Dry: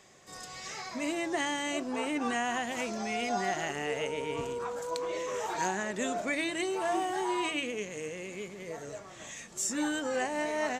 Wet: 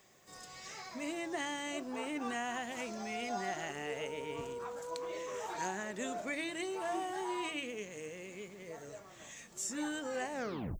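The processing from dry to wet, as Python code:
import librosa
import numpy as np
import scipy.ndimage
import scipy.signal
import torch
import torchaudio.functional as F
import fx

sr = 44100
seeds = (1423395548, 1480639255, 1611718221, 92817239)

y = fx.tape_stop_end(x, sr, length_s=0.46)
y = fx.dmg_noise_colour(y, sr, seeds[0], colour='violet', level_db=-69.0)
y = F.gain(torch.from_numpy(y), -6.5).numpy()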